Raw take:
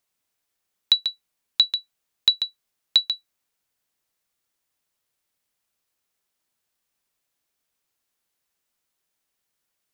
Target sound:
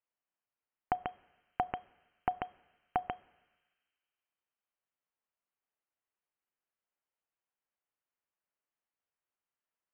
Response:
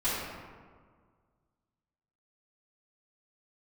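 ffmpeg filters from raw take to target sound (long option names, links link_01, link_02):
-filter_complex "[0:a]agate=range=-17dB:threshold=-45dB:ratio=16:detection=peak,crystalizer=i=5.5:c=0,asplit=2[link_01][link_02];[1:a]atrim=start_sample=2205,asetrate=29547,aresample=44100,adelay=27[link_03];[link_02][link_03]afir=irnorm=-1:irlink=0,volume=-31.5dB[link_04];[link_01][link_04]amix=inputs=2:normalize=0,lowpass=frequency=2700:width_type=q:width=0.5098,lowpass=frequency=2700:width_type=q:width=0.6013,lowpass=frequency=2700:width_type=q:width=0.9,lowpass=frequency=2700:width_type=q:width=2.563,afreqshift=-3200,volume=1.5dB"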